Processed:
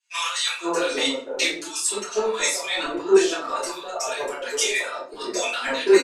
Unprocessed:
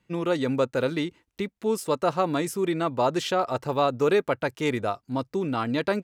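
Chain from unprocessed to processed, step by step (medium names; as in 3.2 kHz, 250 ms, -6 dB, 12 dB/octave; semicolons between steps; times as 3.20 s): partial rectifier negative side -3 dB; Bessel high-pass 670 Hz, order 4; reverb removal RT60 1.3 s; low-pass 11 kHz 24 dB/octave; peaking EQ 7.1 kHz +14 dB 1.8 oct; band-stop 2 kHz, Q 20; compressor with a negative ratio -37 dBFS, ratio -1; bands offset in time highs, lows 510 ms, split 980 Hz; simulated room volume 60 m³, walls mixed, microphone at 3.1 m; three bands expanded up and down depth 70%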